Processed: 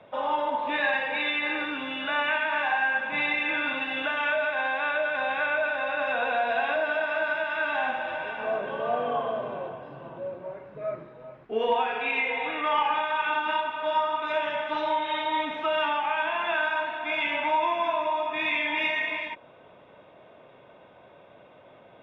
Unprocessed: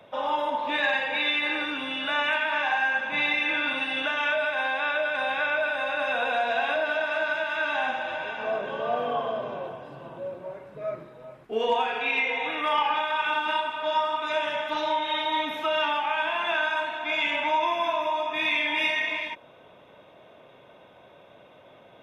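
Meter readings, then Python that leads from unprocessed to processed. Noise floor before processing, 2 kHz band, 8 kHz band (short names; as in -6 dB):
-53 dBFS, -1.0 dB, n/a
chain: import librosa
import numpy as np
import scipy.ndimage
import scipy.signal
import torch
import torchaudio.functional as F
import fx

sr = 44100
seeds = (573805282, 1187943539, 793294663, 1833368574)

y = scipy.signal.sosfilt(scipy.signal.butter(2, 2900.0, 'lowpass', fs=sr, output='sos'), x)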